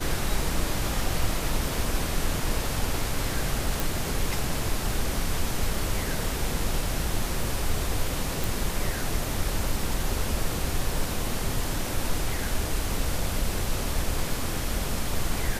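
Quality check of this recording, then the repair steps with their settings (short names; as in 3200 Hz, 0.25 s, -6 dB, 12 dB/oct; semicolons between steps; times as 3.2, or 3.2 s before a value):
3.8 pop
8.44 pop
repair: de-click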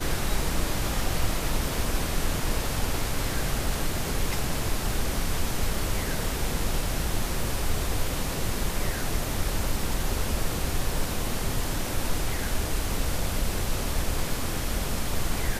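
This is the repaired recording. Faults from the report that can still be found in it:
none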